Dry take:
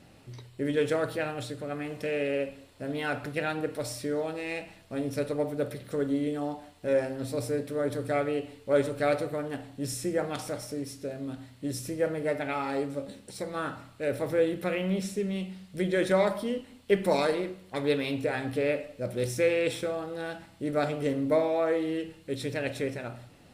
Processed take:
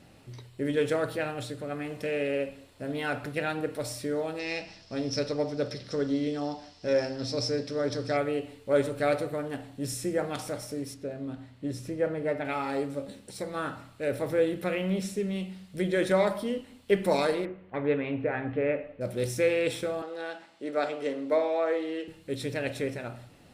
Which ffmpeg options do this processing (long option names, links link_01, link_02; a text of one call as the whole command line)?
ffmpeg -i in.wav -filter_complex "[0:a]asettb=1/sr,asplit=3[link_01][link_02][link_03];[link_01]atrim=end=4.394[link_04];[link_02]atrim=start=4.39:end=8.17,asetpts=PTS-STARTPTS,afade=type=in:duration=0.004:curve=qsin,afade=type=out:start_time=3.776:duration=0.004:curve=qsin,lowpass=frequency=5300:width_type=q:width=8.3[link_05];[link_03]atrim=start=8.166[link_06];[link_04][link_05]acrossfade=duration=0.004:curve1=hsin:curve2=qsin[link_07];[link_07][link_06]acrossfade=duration=0.004:curve1=qsin:curve2=hsin,asettb=1/sr,asplit=3[link_08][link_09][link_10];[link_08]atrim=end=10.944[link_11];[link_09]atrim=start=10.94:end=12.45,asetpts=PTS-STARTPTS,afade=type=in:duration=0.004:curve=qsin,afade=type=out:start_time=1.506:duration=0.004:curve=qsin,lowpass=frequency=2700:poles=1[link_12];[link_10]atrim=start=12.446[link_13];[link_11][link_12]acrossfade=duration=0.004:curve1=hsin:curve2=qsin[link_14];[link_14][link_13]acrossfade=duration=0.004:curve1=qsin:curve2=hsin,asettb=1/sr,asplit=3[link_15][link_16][link_17];[link_15]atrim=end=17.454[link_18];[link_16]atrim=start=17.45:end=19.01,asetpts=PTS-STARTPTS,afade=type=in:duration=0.004:curve=qsin,afade=type=out:start_time=1.556:duration=0.004:curve=qsin,lowpass=frequency=2400:width=0.5412,lowpass=frequency=2400:width=1.3066[link_19];[link_17]atrim=start=19.006[link_20];[link_18][link_19]acrossfade=duration=0.004:curve1=hsin:curve2=qsin[link_21];[link_21][link_20]acrossfade=duration=0.004:curve1=qsin:curve2=hsin,asettb=1/sr,asplit=3[link_22][link_23][link_24];[link_22]atrim=end=20.024[link_25];[link_23]atrim=start=20.02:end=22.08,asetpts=PTS-STARTPTS,afade=type=in:duration=0.004:curve=qsin,afade=type=out:start_time=2.056:duration=0.004:curve=qsin,acrossover=split=280 7700:gain=0.0631 1 0.141[link_26][link_27][link_28];[link_26][link_27][link_28]amix=inputs=3:normalize=0[link_29];[link_24]atrim=start=22.076[link_30];[link_25][link_29]acrossfade=duration=0.004:curve1=hsin:curve2=qsin[link_31];[link_31][link_30]acrossfade=duration=0.004:curve1=qsin:curve2=hsin" out.wav